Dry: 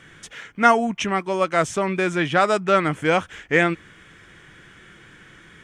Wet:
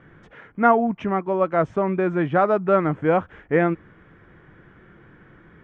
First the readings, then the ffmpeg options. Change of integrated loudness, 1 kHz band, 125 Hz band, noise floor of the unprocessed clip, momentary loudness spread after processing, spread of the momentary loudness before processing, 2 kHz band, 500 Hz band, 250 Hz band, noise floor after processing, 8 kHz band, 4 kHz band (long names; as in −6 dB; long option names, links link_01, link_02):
−1.0 dB, −1.0 dB, +1.5 dB, −49 dBFS, 6 LU, 10 LU, −7.0 dB, +1.0 dB, +1.5 dB, −53 dBFS, below −30 dB, below −15 dB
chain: -af "lowpass=1100,volume=1.5dB"